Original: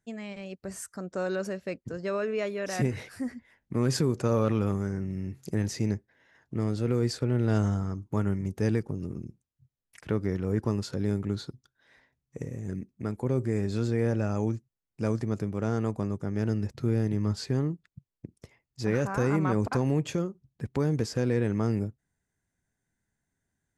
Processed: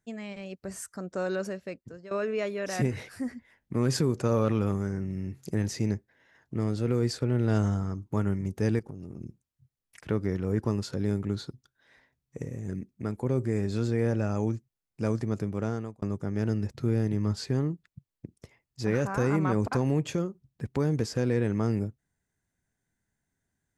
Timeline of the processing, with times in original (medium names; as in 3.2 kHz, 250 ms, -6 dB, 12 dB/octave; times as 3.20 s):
1.40–2.11 s: fade out, to -15.5 dB
8.79–9.21 s: compression, threshold -36 dBFS
15.60–16.02 s: fade out